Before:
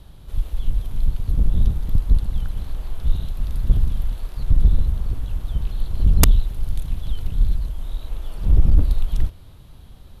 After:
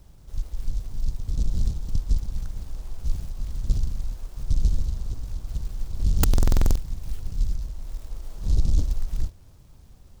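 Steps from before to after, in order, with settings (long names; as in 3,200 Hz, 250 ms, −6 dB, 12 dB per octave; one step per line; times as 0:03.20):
buffer that repeats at 0:06.29, samples 2,048, times 9
short delay modulated by noise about 5,100 Hz, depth 0.097 ms
level −6.5 dB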